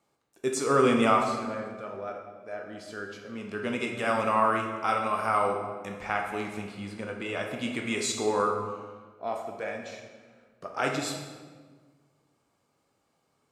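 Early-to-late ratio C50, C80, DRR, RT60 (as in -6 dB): 4.0 dB, 6.5 dB, 1.0 dB, 1.5 s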